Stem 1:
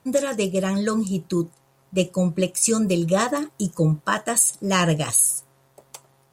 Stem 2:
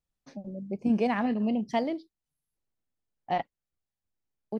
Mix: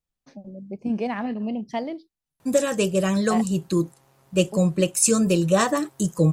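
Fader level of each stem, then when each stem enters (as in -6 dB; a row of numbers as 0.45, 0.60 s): +1.0, -0.5 dB; 2.40, 0.00 s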